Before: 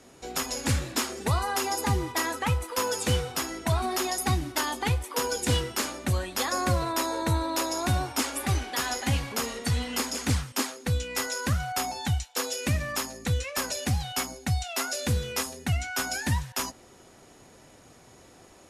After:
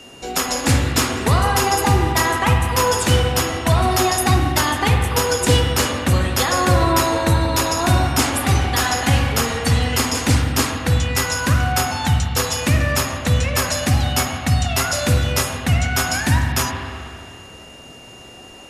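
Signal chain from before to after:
steady tone 2,800 Hz −50 dBFS
spring reverb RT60 2.3 s, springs 44/51/60 ms, chirp 45 ms, DRR 2.5 dB
level +9 dB

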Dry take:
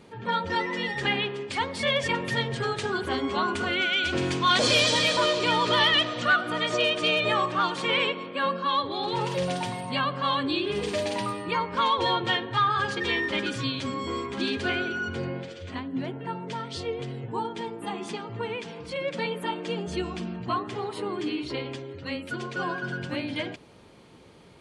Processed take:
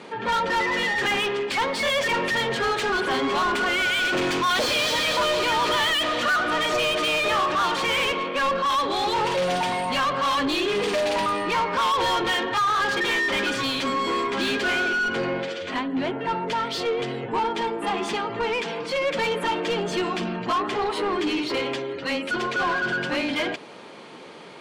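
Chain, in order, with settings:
Chebyshev band-pass filter 170–9,900 Hz, order 2
mid-hump overdrive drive 26 dB, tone 2,800 Hz, clips at −11.5 dBFS
level −3.5 dB

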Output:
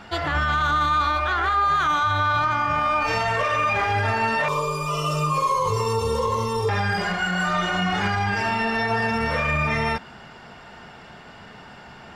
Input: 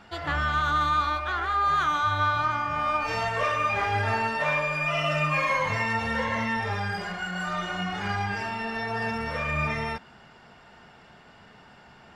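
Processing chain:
0:04.48–0:06.69: drawn EQ curve 120 Hz 0 dB, 270 Hz −13 dB, 420 Hz +12 dB, 690 Hz −19 dB, 1,100 Hz +3 dB, 1,700 Hz −29 dB, 3,200 Hz −7 dB, 10,000 Hz +8 dB
brickwall limiter −22.5 dBFS, peak gain reduction 8 dB
level +8.5 dB

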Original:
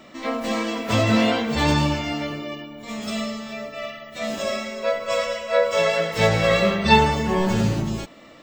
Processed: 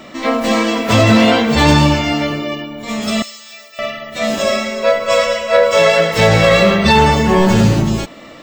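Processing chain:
0:03.22–0:03.79: first difference
in parallel at −3 dB: hard clipping −16.5 dBFS, distortion −11 dB
on the sum: boost into a limiter +6.5 dB
level −1 dB

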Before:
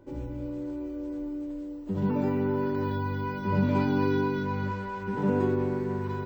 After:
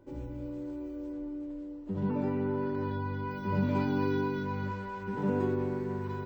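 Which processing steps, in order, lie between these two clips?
0:01.12–0:03.31: low-pass filter 3,800 Hz 6 dB per octave
level −4 dB

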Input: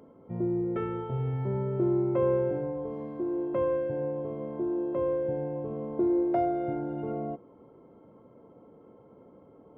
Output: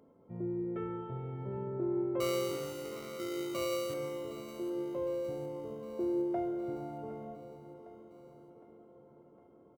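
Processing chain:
0:02.20–0:03.94: sample-rate reduction 1,700 Hz, jitter 0%
repeating echo 760 ms, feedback 60%, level −15 dB
on a send at −7 dB: convolution reverb RT60 3.2 s, pre-delay 21 ms
on the sum: level −9 dB

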